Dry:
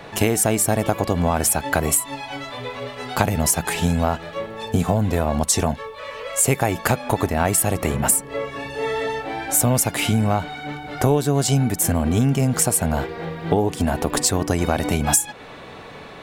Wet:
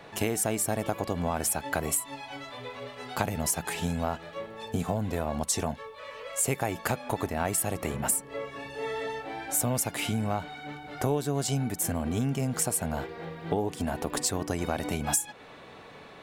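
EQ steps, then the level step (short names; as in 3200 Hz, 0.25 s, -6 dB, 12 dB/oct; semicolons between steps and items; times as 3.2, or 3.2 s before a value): low shelf 94 Hz -5.5 dB; -9.0 dB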